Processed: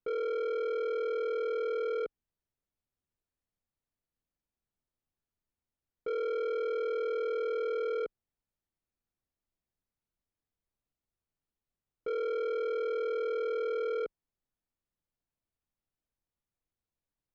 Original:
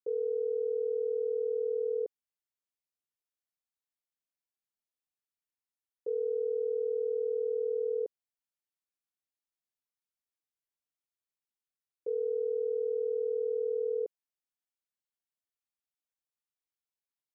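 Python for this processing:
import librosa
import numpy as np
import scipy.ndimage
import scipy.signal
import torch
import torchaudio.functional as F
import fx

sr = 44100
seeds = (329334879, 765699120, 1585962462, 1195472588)

y = fx.tilt_eq(x, sr, slope=-4.0)
y = 10.0 ** (-33.5 / 20.0) * np.tanh(y / 10.0 ** (-33.5 / 20.0))
y = y * librosa.db_to_amplitude(3.0)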